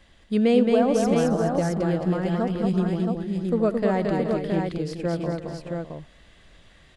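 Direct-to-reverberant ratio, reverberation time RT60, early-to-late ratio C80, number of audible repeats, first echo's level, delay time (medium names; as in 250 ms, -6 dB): no reverb, no reverb, no reverb, 6, -18.5 dB, 83 ms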